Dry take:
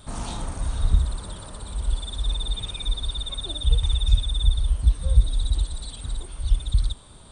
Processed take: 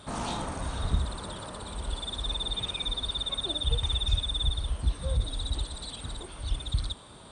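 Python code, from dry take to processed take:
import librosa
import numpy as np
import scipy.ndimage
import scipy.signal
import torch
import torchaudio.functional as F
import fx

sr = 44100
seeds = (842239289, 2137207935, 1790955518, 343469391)

y = fx.highpass(x, sr, hz=210.0, slope=6)
y = fx.over_compress(y, sr, threshold_db=-24.0, ratio=-1.0)
y = fx.lowpass(y, sr, hz=3900.0, slope=6)
y = y * librosa.db_to_amplitude(3.5)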